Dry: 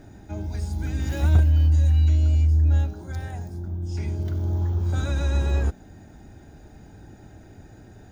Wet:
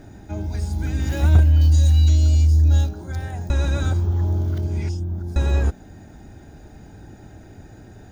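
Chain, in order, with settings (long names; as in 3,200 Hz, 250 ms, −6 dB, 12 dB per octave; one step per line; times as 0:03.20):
0:01.61–0:02.89: high shelf with overshoot 3,100 Hz +8.5 dB, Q 1.5
0:03.50–0:05.36: reverse
level +3.5 dB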